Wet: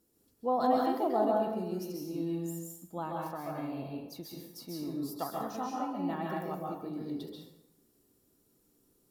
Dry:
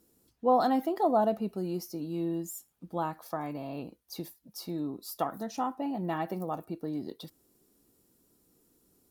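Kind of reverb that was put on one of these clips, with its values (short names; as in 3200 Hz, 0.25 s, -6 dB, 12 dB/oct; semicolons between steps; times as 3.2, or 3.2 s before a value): plate-style reverb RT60 0.8 s, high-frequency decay 0.75×, pre-delay 0.12 s, DRR -2 dB; gain -6 dB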